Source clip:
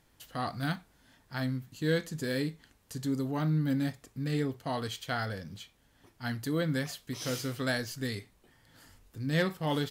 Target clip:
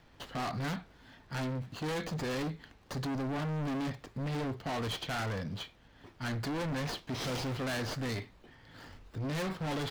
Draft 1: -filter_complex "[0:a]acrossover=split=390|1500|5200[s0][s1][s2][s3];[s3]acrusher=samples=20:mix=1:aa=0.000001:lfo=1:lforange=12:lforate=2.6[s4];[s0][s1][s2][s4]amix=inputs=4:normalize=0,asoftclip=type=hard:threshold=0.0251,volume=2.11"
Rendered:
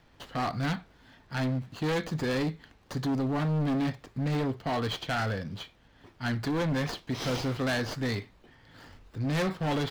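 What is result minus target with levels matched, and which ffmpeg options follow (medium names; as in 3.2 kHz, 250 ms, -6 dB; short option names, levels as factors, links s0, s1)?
hard clipper: distortion -4 dB
-filter_complex "[0:a]acrossover=split=390|1500|5200[s0][s1][s2][s3];[s3]acrusher=samples=20:mix=1:aa=0.000001:lfo=1:lforange=12:lforate=2.6[s4];[s0][s1][s2][s4]amix=inputs=4:normalize=0,asoftclip=type=hard:threshold=0.0106,volume=2.11"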